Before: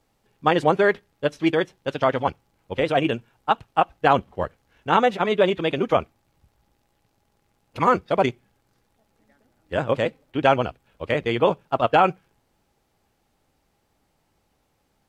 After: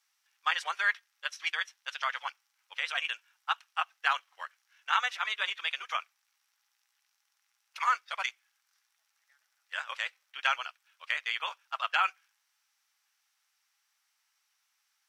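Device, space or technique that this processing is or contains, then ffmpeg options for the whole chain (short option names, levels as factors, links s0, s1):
headphones lying on a table: -af "highpass=f=1300:w=0.5412,highpass=f=1300:w=1.3066,equalizer=f=5700:t=o:w=0.25:g=8,volume=0.794"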